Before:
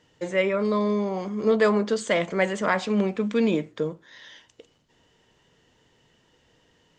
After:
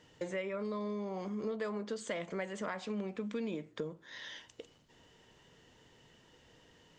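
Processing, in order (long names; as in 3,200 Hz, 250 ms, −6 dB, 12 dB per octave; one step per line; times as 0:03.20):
downward compressor 5 to 1, threshold −37 dBFS, peak gain reduction 19 dB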